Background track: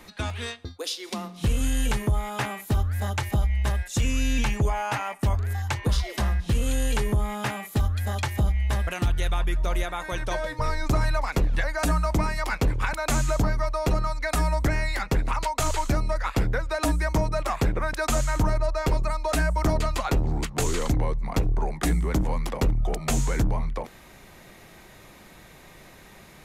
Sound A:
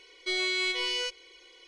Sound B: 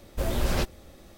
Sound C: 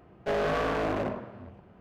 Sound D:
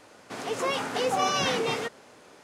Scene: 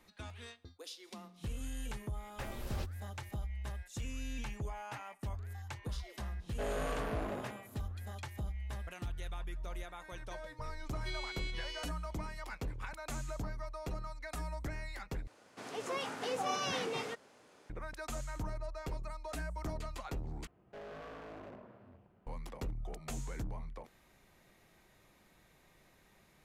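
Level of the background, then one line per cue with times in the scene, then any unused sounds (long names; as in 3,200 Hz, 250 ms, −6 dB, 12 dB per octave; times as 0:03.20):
background track −17 dB
0:02.21: mix in B −17 dB
0:06.32: mix in C −10.5 dB
0:10.79: mix in A −14.5 dB + speech leveller
0:15.27: overwrite with D −10 dB
0:20.47: overwrite with C −13 dB + downward compressor 2 to 1, threshold −39 dBFS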